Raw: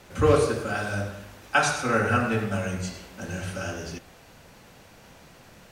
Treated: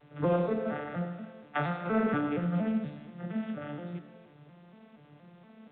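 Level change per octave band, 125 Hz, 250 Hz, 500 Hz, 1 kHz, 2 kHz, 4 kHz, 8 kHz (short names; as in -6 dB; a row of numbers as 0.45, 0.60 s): -6.0 dB, -0.5 dB, -7.0 dB, -8.5 dB, -12.5 dB, -16.0 dB, under -40 dB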